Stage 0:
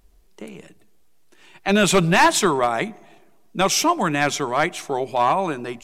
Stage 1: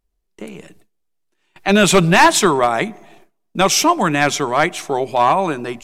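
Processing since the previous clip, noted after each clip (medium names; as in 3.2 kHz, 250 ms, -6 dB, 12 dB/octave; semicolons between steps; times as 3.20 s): gate with hold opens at -38 dBFS; trim +4.5 dB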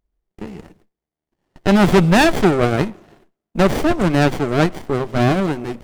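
sliding maximum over 33 samples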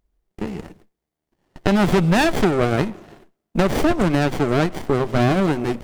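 compression, threshold -18 dBFS, peak gain reduction 9.5 dB; trim +4 dB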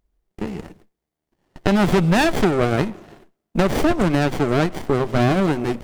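no audible change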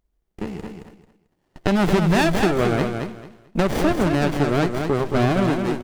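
feedback delay 221 ms, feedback 22%, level -6 dB; trim -2 dB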